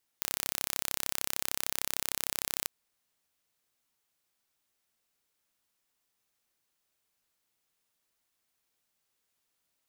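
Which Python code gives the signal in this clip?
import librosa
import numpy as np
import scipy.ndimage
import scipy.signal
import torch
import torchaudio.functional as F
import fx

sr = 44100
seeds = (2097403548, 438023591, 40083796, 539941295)

y = 10.0 ** (-4.0 / 20.0) * (np.mod(np.arange(round(2.45 * sr)), round(sr / 33.2)) == 0)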